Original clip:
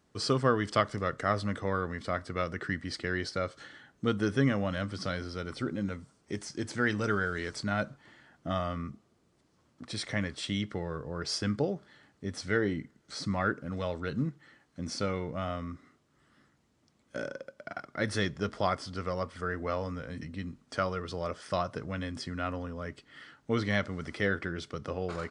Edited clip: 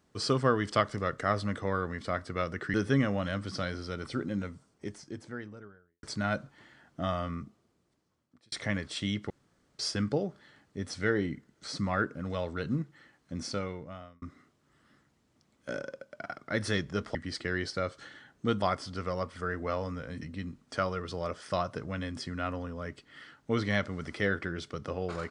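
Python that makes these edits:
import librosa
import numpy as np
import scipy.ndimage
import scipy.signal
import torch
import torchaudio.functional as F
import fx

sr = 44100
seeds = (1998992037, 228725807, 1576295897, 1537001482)

y = fx.studio_fade_out(x, sr, start_s=5.74, length_s=1.76)
y = fx.edit(y, sr, fx.move(start_s=2.74, length_s=1.47, to_s=18.62),
    fx.fade_out_span(start_s=8.83, length_s=1.16),
    fx.room_tone_fill(start_s=10.77, length_s=0.49),
    fx.fade_out_span(start_s=14.85, length_s=0.84), tone=tone)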